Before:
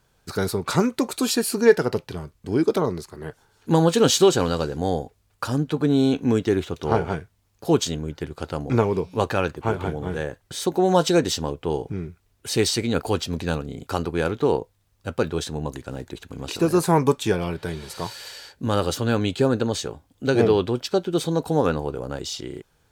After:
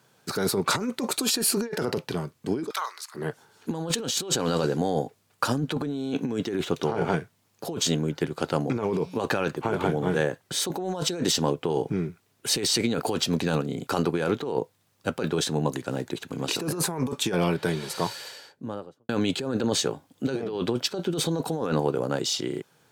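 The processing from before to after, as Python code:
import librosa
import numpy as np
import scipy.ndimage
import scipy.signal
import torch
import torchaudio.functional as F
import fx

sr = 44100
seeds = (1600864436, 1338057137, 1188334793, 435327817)

y = fx.highpass(x, sr, hz=1100.0, slope=24, at=(2.69, 3.14), fade=0.02)
y = fx.studio_fade_out(y, sr, start_s=17.82, length_s=1.27)
y = scipy.signal.sosfilt(scipy.signal.butter(4, 130.0, 'highpass', fs=sr, output='sos'), y)
y = fx.over_compress(y, sr, threshold_db=-26.0, ratio=-1.0)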